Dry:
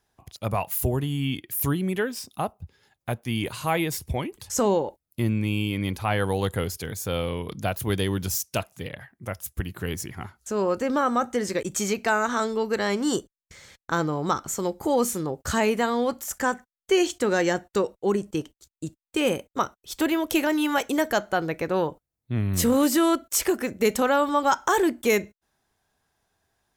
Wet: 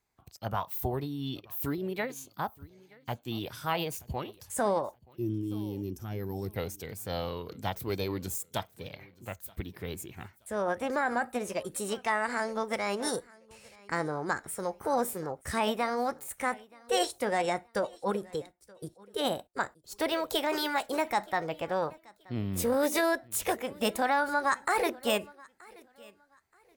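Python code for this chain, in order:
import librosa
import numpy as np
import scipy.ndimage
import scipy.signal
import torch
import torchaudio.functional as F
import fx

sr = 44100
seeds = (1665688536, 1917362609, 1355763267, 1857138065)

p1 = fx.spec_box(x, sr, start_s=5.17, length_s=1.38, low_hz=420.0, high_hz=4100.0, gain_db=-15)
p2 = p1 + fx.echo_feedback(p1, sr, ms=927, feedback_pct=27, wet_db=-23, dry=0)
p3 = fx.formant_shift(p2, sr, semitones=4)
p4 = fx.dynamic_eq(p3, sr, hz=790.0, q=1.4, threshold_db=-33.0, ratio=4.0, max_db=4)
y = F.gain(torch.from_numpy(p4), -8.0).numpy()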